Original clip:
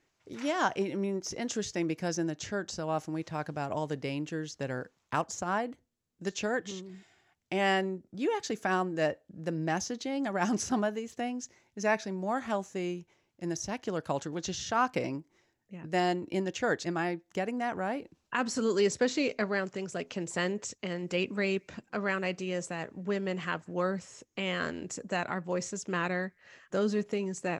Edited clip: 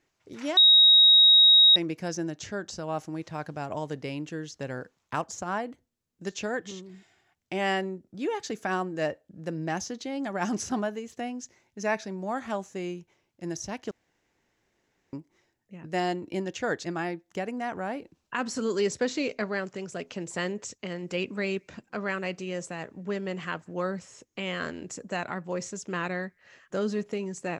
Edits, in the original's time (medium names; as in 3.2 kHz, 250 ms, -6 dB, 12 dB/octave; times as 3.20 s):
0.57–1.76 s: bleep 3.79 kHz -13 dBFS
13.91–15.13 s: room tone